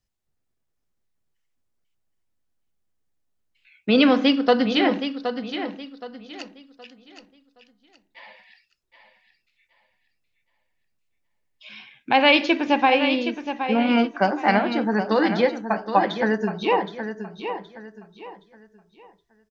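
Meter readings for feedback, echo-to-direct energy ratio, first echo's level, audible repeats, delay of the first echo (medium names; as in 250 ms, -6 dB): 31%, -8.5 dB, -9.0 dB, 3, 770 ms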